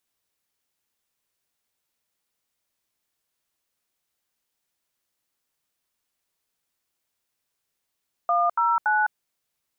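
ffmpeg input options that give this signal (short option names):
-f lavfi -i "aevalsrc='0.0891*clip(min(mod(t,0.284),0.207-mod(t,0.284))/0.002,0,1)*(eq(floor(t/0.284),0)*(sin(2*PI*697*mod(t,0.284))+sin(2*PI*1209*mod(t,0.284)))+eq(floor(t/0.284),1)*(sin(2*PI*941*mod(t,0.284))+sin(2*PI*1336*mod(t,0.284)))+eq(floor(t/0.284),2)*(sin(2*PI*852*mod(t,0.284))+sin(2*PI*1477*mod(t,0.284))))':d=0.852:s=44100"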